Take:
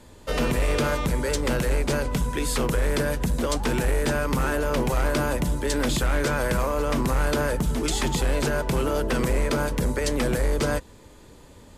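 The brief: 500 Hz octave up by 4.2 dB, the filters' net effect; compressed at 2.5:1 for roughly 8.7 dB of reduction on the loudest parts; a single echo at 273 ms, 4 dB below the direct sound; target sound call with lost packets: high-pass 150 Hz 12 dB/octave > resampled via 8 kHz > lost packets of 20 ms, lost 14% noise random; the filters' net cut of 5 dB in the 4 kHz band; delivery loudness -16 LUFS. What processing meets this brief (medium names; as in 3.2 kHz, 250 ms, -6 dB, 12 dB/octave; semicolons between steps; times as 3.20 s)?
peaking EQ 500 Hz +5 dB; peaking EQ 4 kHz -6.5 dB; compression 2.5:1, threshold -32 dBFS; high-pass 150 Hz 12 dB/octave; delay 273 ms -4 dB; resampled via 8 kHz; lost packets of 20 ms, lost 14% noise random; trim +15.5 dB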